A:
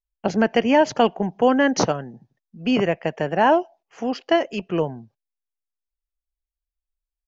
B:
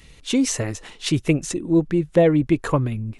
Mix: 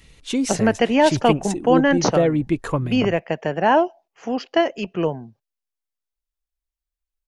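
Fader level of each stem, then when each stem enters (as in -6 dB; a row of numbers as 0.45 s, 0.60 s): +0.5 dB, -2.5 dB; 0.25 s, 0.00 s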